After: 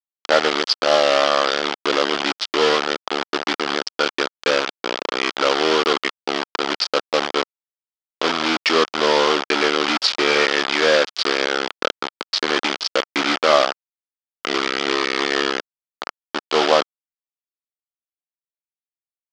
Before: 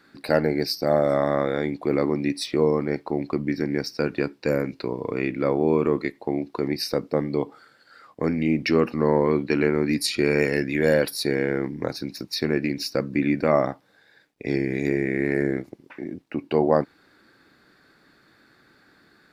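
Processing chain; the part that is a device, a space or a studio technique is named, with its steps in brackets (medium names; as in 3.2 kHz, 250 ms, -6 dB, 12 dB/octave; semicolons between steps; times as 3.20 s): hand-held game console (bit crusher 4-bit; cabinet simulation 450–5600 Hz, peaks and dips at 1.3 kHz +7 dB, 3.2 kHz +7 dB, 4.8 kHz +5 dB); trim +5 dB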